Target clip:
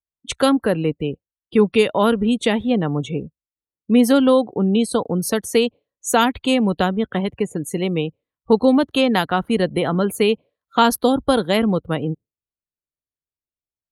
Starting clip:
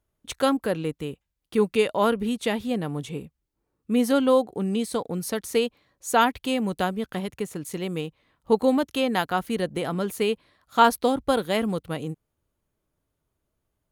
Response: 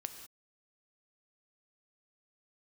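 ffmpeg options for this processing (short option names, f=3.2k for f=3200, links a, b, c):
-filter_complex "[0:a]afftdn=nr=33:nf=-42,acrossover=split=320|3000[a][b][c];[b]acompressor=threshold=-27dB:ratio=2[d];[a][d][c]amix=inputs=3:normalize=0,volume=8.5dB"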